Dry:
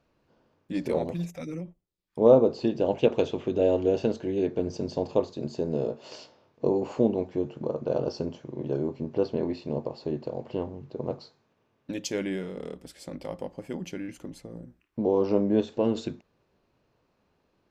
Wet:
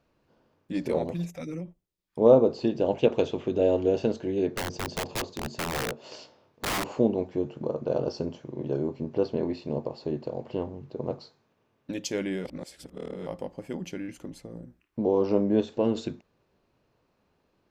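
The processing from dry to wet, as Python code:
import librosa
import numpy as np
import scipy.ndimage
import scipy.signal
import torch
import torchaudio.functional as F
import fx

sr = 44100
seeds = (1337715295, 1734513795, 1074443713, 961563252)

y = fx.overflow_wrap(x, sr, gain_db=24.0, at=(4.54, 6.93))
y = fx.edit(y, sr, fx.reverse_span(start_s=12.45, length_s=0.81), tone=tone)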